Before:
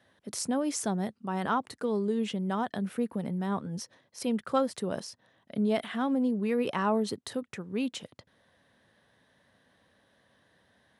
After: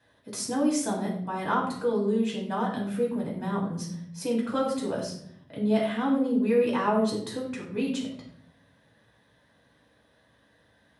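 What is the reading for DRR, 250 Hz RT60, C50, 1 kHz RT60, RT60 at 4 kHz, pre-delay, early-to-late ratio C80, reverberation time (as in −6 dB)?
−3.0 dB, 1.1 s, 5.0 dB, 0.55 s, 0.50 s, 4 ms, 8.5 dB, 0.65 s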